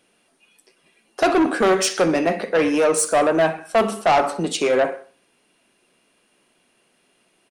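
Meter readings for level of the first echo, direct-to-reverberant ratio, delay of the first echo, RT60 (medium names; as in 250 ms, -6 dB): -18.0 dB, no reverb, 63 ms, no reverb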